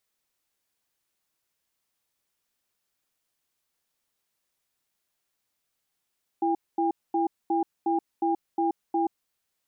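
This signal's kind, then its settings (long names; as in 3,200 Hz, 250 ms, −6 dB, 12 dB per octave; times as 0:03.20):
tone pair in a cadence 334 Hz, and 805 Hz, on 0.13 s, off 0.23 s, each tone −24.5 dBFS 2.66 s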